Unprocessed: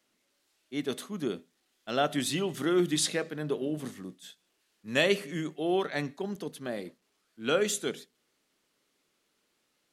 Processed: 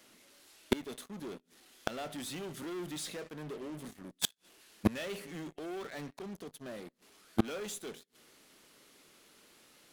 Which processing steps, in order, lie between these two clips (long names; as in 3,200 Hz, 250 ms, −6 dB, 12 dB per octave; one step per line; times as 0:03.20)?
parametric band 11,000 Hz +4 dB 0.3 octaves
in parallel at −7 dB: fuzz pedal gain 40 dB, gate −46 dBFS
on the sum: gate with flip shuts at −21 dBFS, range −35 dB
soft clipping −26 dBFS, distortion −12 dB
level +13 dB